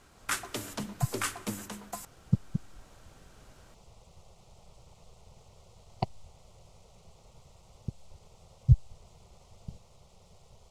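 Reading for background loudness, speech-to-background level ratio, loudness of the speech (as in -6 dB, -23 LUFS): -36.5 LUFS, 4.0 dB, -32.5 LUFS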